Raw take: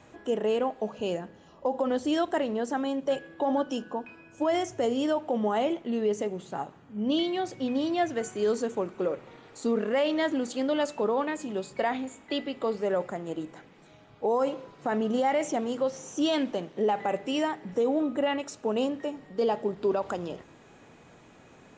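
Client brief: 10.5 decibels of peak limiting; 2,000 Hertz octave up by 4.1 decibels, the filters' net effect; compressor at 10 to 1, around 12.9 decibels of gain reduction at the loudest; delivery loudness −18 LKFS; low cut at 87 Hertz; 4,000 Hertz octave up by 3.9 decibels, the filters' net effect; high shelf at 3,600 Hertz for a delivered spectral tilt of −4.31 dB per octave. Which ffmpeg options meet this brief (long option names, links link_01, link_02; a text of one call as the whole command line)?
ffmpeg -i in.wav -af "highpass=87,equalizer=frequency=2000:width_type=o:gain=4.5,highshelf=frequency=3600:gain=-4,equalizer=frequency=4000:width_type=o:gain=6,acompressor=threshold=-35dB:ratio=10,volume=24dB,alimiter=limit=-8dB:level=0:latency=1" out.wav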